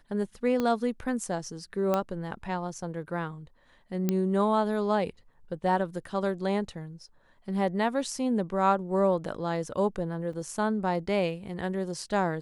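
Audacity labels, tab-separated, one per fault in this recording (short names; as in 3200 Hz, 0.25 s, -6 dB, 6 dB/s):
0.600000	0.600000	pop -16 dBFS
1.940000	1.940000	pop -14 dBFS
4.090000	4.090000	pop -13 dBFS
10.330000	10.330000	gap 3.9 ms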